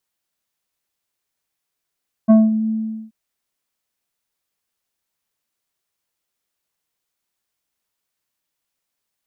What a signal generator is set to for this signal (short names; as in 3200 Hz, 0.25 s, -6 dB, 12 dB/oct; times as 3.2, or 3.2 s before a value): synth note square A3 24 dB/oct, low-pass 250 Hz, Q 0.71, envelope 2 oct, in 0.32 s, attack 23 ms, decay 0.20 s, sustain -10 dB, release 0.42 s, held 0.41 s